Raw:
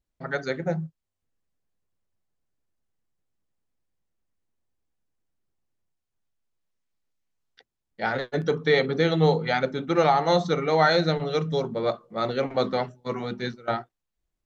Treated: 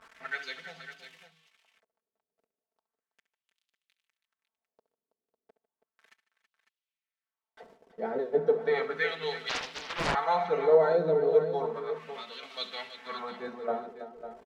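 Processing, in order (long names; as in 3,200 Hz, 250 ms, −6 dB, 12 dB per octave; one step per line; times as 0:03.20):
converter with a step at zero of −35.5 dBFS
comb filter 4.5 ms, depth 74%
0:11.79–0:12.43: downward compressor, threshold −26 dBFS, peak gain reduction 8.5 dB
auto-filter band-pass sine 0.34 Hz 410–3,400 Hz
multi-tap delay 68/149/326/551 ms −14.5/−19/−12.5/−11.5 dB
0:09.49–0:10.15: highs frequency-modulated by the lows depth 0.96 ms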